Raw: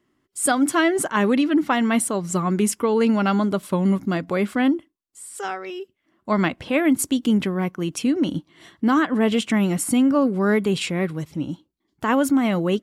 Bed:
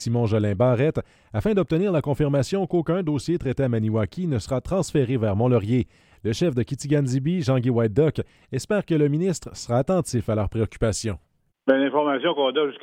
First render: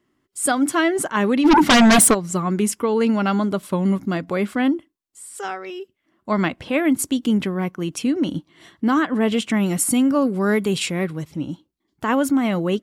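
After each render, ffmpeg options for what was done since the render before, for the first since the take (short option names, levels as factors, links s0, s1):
-filter_complex "[0:a]asplit=3[s0][s1][s2];[s0]afade=t=out:st=1.44:d=0.02[s3];[s1]aeval=exprs='0.376*sin(PI/2*3.55*val(0)/0.376)':c=same,afade=t=in:st=1.44:d=0.02,afade=t=out:st=2.13:d=0.02[s4];[s2]afade=t=in:st=2.13:d=0.02[s5];[s3][s4][s5]amix=inputs=3:normalize=0,asettb=1/sr,asplit=3[s6][s7][s8];[s6]atrim=end=9.664[s9];[s7]atrim=start=9.66:end=11.04,asetpts=PTS-STARTPTS,afade=t=in:d=0.004:c=qsin,afade=t=out:st=1.376:d=0.004:c=qsin,highshelf=f=5100:g=7[s10];[s8]atrim=start=11.036[s11];[s9][s10]acrossfade=d=0.004:c1=hsin:c2=qsin[s12];[s12][s11]acrossfade=d=0.004:c1=qsin:c2=hsin"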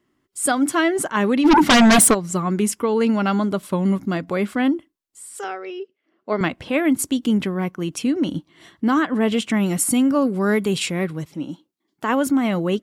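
-filter_complex "[0:a]asettb=1/sr,asplit=3[s0][s1][s2];[s0]atrim=end=5.444[s3];[s1]atrim=start=5.44:end=6.41,asetpts=PTS-STARTPTS,afade=t=in:d=0.004:c=qsin,afade=t=out:st=0.966:d=0.004:c=qsin,highpass=300,equalizer=f=440:t=q:w=4:g=8,equalizer=f=1000:t=q:w=4:g=-6,equalizer=f=1800:t=q:w=4:g=-3,equalizer=f=3600:t=q:w=4:g=-5,lowpass=f=5000:w=0.5412,lowpass=f=5000:w=1.3066[s4];[s2]atrim=start=6.406[s5];[s3][s4]acrossfade=d=0.004:c1=hsin:c2=qsin[s6];[s6][s5]acrossfade=d=0.004:c1=qsin:c2=hsin,asettb=1/sr,asplit=3[s7][s8][s9];[s7]atrim=end=11.264[s10];[s8]atrim=start=11.26:end=12.27,asetpts=PTS-STARTPTS,afade=t=in:d=0.004:c=qsin,afade=t=out:st=1.006:d=0.004:c=qsin,highpass=200[s11];[s9]atrim=start=12.266[s12];[s10][s11]acrossfade=d=0.004:c1=hsin:c2=qsin[s13];[s13][s12]acrossfade=d=0.004:c1=qsin:c2=hsin"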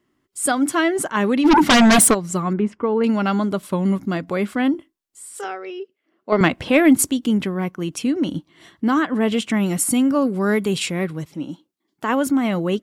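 -filter_complex "[0:a]asettb=1/sr,asplit=3[s0][s1][s2];[s0]atrim=end=2.534[s3];[s1]atrim=start=2.53:end=3.04,asetpts=PTS-STARTPTS,afade=t=in:d=0.004:c=qsin,afade=t=out:st=0.506:d=0.004:c=qsin,lowpass=1700[s4];[s2]atrim=start=3.036[s5];[s3][s4]acrossfade=d=0.004:c1=hsin:c2=qsin[s6];[s6][s5]acrossfade=d=0.004:c1=qsin:c2=hsin,asettb=1/sr,asplit=3[s7][s8][s9];[s7]atrim=end=4.724[s10];[s8]atrim=start=4.72:end=5.46,asetpts=PTS-STARTPTS,afade=t=in:d=0.004:c=qsin,afade=t=out:st=0.736:d=0.004:c=qsin,asplit=2[s11][s12];[s12]adelay=22,volume=0.355[s13];[s11][s13]amix=inputs=2:normalize=0,atrim=end_sample=32634[s14];[s9]atrim=start=5.456[s15];[s10][s14]acrossfade=d=0.004:c1=hsin:c2=qsin[s16];[s16][s15]acrossfade=d=0.004:c1=qsin:c2=hsin,asettb=1/sr,asplit=3[s17][s18][s19];[s17]atrim=end=6.324[s20];[s18]atrim=start=6.32:end=7.11,asetpts=PTS-STARTPTS,afade=t=in:d=0.004:c=qsin,afade=t=out:st=0.786:d=0.004:c=qsin,acontrast=51[s21];[s19]atrim=start=7.106[s22];[s20][s21]acrossfade=d=0.004:c1=hsin:c2=qsin[s23];[s23][s22]acrossfade=d=0.004:c1=qsin:c2=hsin"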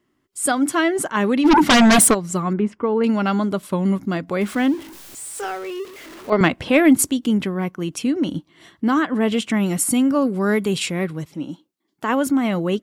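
-filter_complex "[0:a]asettb=1/sr,asplit=3[s0][s1][s2];[s0]atrim=end=4.414[s3];[s1]atrim=start=4.41:end=6.3,asetpts=PTS-STARTPTS,afade=t=in:d=0.004:c=qsin,afade=t=out:st=1.886:d=0.004:c=qsin,aeval=exprs='val(0)+0.5*0.0211*sgn(val(0))':c=same[s4];[s2]atrim=start=6.296[s5];[s3][s4]acrossfade=d=0.004:c1=hsin:c2=qsin[s6];[s6][s5]acrossfade=d=0.004:c1=qsin:c2=hsin"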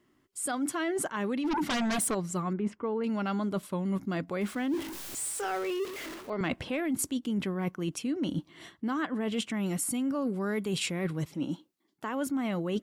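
-af "alimiter=limit=0.251:level=0:latency=1:release=27,areverse,acompressor=threshold=0.0355:ratio=6,areverse"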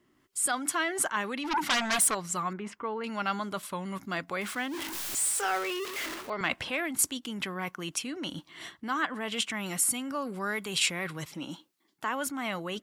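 -filter_complex "[0:a]acrossover=split=770[s0][s1];[s0]alimiter=level_in=2.66:limit=0.0631:level=0:latency=1:release=295,volume=0.376[s2];[s1]dynaudnorm=f=140:g=3:m=2.11[s3];[s2][s3]amix=inputs=2:normalize=0"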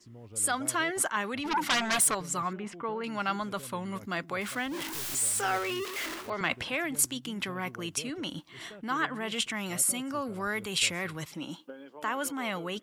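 -filter_complex "[1:a]volume=0.0447[s0];[0:a][s0]amix=inputs=2:normalize=0"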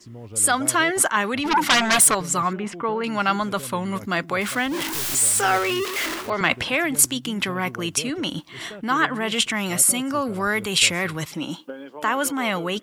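-af "volume=2.99"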